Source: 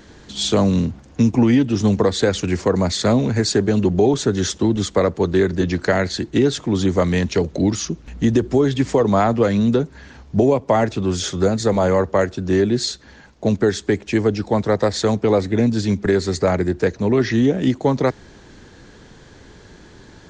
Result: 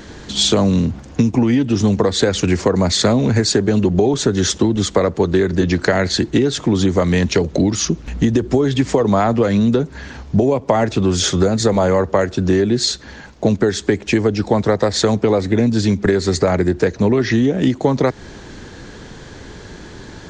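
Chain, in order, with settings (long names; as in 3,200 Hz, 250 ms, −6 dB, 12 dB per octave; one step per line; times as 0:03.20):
downward compressor, threshold −20 dBFS, peak gain reduction 9.5 dB
level +8.5 dB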